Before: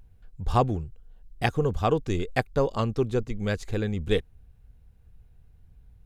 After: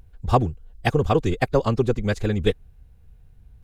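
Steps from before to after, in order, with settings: time stretch by phase-locked vocoder 0.6×; trim +5.5 dB

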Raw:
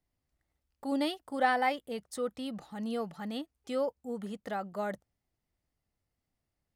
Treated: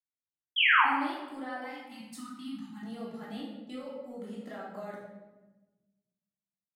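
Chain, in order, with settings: 1.64–2.83 s: elliptic band-stop 290–860 Hz; gate -50 dBFS, range -24 dB; high-pass 120 Hz 12 dB/octave; compression 6:1, threshold -36 dBFS, peak gain reduction 13.5 dB; 0.56–0.85 s: painted sound fall 760–3400 Hz -21 dBFS; simulated room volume 610 m³, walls mixed, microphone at 3 m; trim -8 dB

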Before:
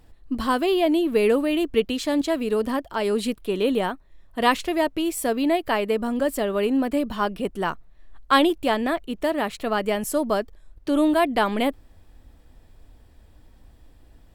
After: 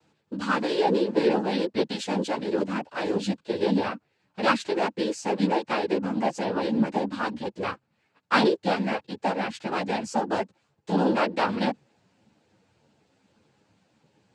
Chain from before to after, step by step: noise-vocoded speech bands 8; three-phase chorus

